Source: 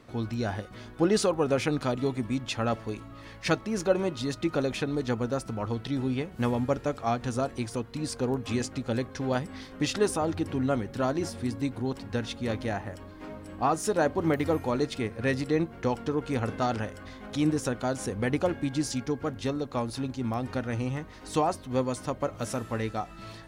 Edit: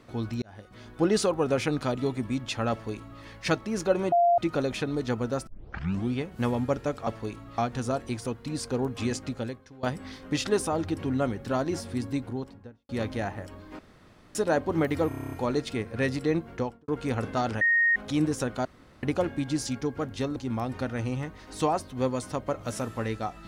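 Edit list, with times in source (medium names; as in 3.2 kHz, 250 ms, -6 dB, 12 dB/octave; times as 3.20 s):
0.42–0.98 s: fade in
2.71–3.22 s: copy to 7.07 s
4.12–4.38 s: bleep 693 Hz -17.5 dBFS
5.47 s: tape start 0.65 s
8.81–9.32 s: fade out quadratic, to -19.5 dB
11.59–12.38 s: studio fade out
13.28–13.84 s: room tone
14.57 s: stutter 0.03 s, 9 plays
15.76–16.13 s: studio fade out
16.86–17.21 s: bleep 1.86 kHz -19 dBFS
17.90–18.28 s: room tone
19.61–20.10 s: delete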